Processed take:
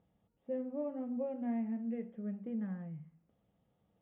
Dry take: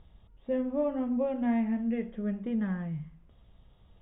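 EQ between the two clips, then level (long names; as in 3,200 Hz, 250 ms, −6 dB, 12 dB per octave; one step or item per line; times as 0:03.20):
loudspeaker in its box 260–2,300 Hz, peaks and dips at 260 Hz −4 dB, 380 Hz −10 dB, 620 Hz −5 dB, 1,000 Hz −7 dB
parametric band 1,700 Hz −13.5 dB 2 octaves
0.0 dB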